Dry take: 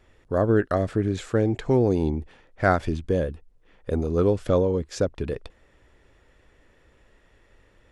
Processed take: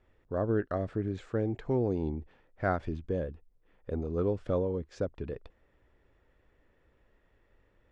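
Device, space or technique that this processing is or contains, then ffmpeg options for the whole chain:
through cloth: -af "lowpass=7.7k,highshelf=f=3.5k:g=-12,volume=-8.5dB"

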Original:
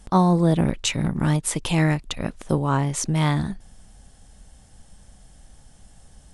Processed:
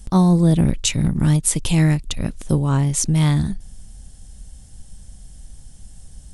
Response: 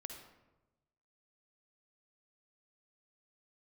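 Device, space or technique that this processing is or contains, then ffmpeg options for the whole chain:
smiley-face EQ: -af "lowshelf=f=120:g=6.5,equalizer=f=1k:t=o:w=2.9:g=-8.5,highshelf=f=6.6k:g=5.5,volume=4dB"

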